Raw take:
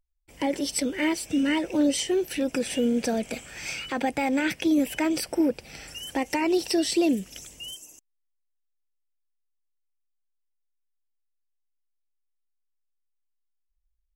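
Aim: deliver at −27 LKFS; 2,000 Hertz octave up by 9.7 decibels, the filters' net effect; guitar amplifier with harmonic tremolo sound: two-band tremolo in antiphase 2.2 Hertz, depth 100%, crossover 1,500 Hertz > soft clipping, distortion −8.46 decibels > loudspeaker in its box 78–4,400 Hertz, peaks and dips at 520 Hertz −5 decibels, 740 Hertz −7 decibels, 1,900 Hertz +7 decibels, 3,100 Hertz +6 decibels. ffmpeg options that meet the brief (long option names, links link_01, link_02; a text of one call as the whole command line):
ffmpeg -i in.wav -filter_complex "[0:a]equalizer=frequency=2000:width_type=o:gain=6,acrossover=split=1500[link_01][link_02];[link_01]aeval=exprs='val(0)*(1-1/2+1/2*cos(2*PI*2.2*n/s))':channel_layout=same[link_03];[link_02]aeval=exprs='val(0)*(1-1/2-1/2*cos(2*PI*2.2*n/s))':channel_layout=same[link_04];[link_03][link_04]amix=inputs=2:normalize=0,asoftclip=threshold=-27.5dB,highpass=78,equalizer=frequency=520:width_type=q:width=4:gain=-5,equalizer=frequency=740:width_type=q:width=4:gain=-7,equalizer=frequency=1900:width_type=q:width=4:gain=7,equalizer=frequency=3100:width_type=q:width=4:gain=6,lowpass=frequency=4400:width=0.5412,lowpass=frequency=4400:width=1.3066,volume=6dB" out.wav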